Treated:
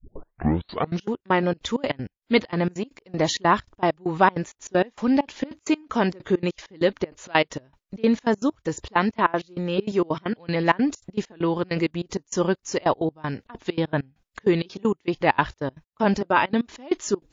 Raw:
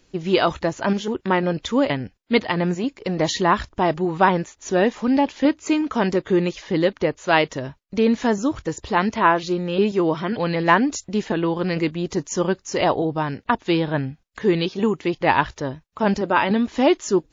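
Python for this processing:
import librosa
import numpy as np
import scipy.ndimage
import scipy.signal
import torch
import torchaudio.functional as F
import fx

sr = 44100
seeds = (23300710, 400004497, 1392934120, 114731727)

y = fx.tape_start_head(x, sr, length_s=1.1)
y = fx.step_gate(y, sr, bpm=196, pattern='x.x..xxx.xx.', floor_db=-24.0, edge_ms=4.5)
y = F.gain(torch.from_numpy(y), -1.0).numpy()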